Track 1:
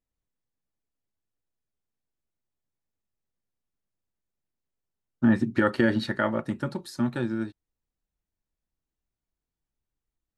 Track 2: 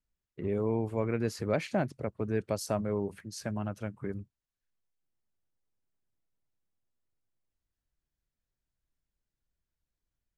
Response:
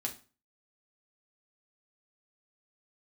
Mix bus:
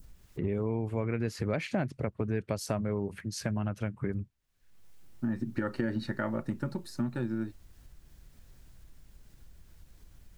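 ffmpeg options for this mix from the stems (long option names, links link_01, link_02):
-filter_complex "[0:a]bandreject=frequency=3300:width=5.9,volume=-5dB[link_01];[1:a]adynamicequalizer=threshold=0.00251:dfrequency=2200:dqfactor=0.8:tfrequency=2200:tqfactor=0.8:attack=5:release=100:ratio=0.375:range=3:mode=boostabove:tftype=bell,acompressor=mode=upward:threshold=-42dB:ratio=2.5,volume=2.5dB,asplit=2[link_02][link_03];[link_03]apad=whole_len=457380[link_04];[link_01][link_04]sidechaincompress=threshold=-47dB:ratio=8:attack=6.6:release=1200[link_05];[link_05][link_02]amix=inputs=2:normalize=0,lowshelf=frequency=260:gain=8,acompressor=threshold=-29dB:ratio=3"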